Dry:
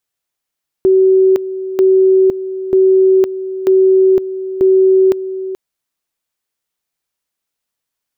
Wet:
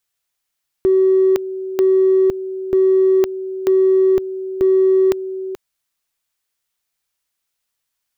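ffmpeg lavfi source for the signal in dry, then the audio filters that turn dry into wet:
-f lavfi -i "aevalsrc='pow(10,(-6-13*gte(mod(t,0.94),0.51))/20)*sin(2*PI*379*t)':duration=4.7:sample_rate=44100"
-filter_complex "[0:a]equalizer=frequency=310:width=0.42:gain=-7,asplit=2[link_01][link_02];[link_02]volume=14.5dB,asoftclip=hard,volume=-14.5dB,volume=-7dB[link_03];[link_01][link_03]amix=inputs=2:normalize=0"

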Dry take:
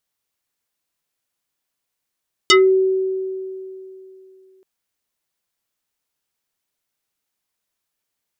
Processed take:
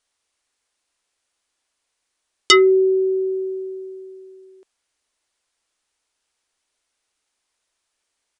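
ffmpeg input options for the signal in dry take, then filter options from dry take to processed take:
-f lavfi -i "aevalsrc='0.447*pow(10,-3*t/2.93)*sin(2*PI*379*t+4.1*pow(10,-3*t/0.2)*sin(2*PI*4.39*379*t))':duration=2.13:sample_rate=44100"
-filter_complex "[0:a]equalizer=frequency=150:width_type=o:width=0.99:gain=-14.5,asplit=2[link_01][link_02];[link_02]acompressor=threshold=-26dB:ratio=6,volume=1dB[link_03];[link_01][link_03]amix=inputs=2:normalize=0,aresample=22050,aresample=44100"

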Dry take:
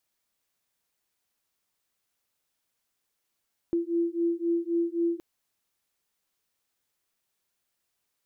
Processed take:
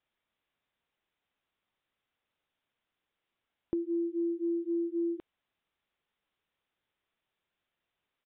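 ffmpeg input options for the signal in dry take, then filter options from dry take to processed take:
-f lavfi -i "aevalsrc='0.0422*(sin(2*PI*337*t)+sin(2*PI*340.8*t))':duration=1.47:sample_rate=44100"
-af "acompressor=threshold=-29dB:ratio=6,aresample=8000,aresample=44100"

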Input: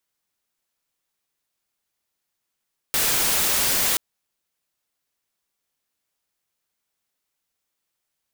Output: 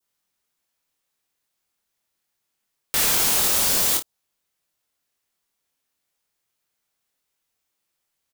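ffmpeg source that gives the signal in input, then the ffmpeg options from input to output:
-f lavfi -i "anoisesrc=color=white:amplitude=0.154:duration=1.03:sample_rate=44100:seed=1"
-af "adynamicequalizer=threshold=0.00708:dfrequency=2000:dqfactor=1.2:tfrequency=2000:tqfactor=1.2:attack=5:release=100:ratio=0.375:range=3.5:mode=cutabove:tftype=bell,aecho=1:1:25|54:0.631|0.237"

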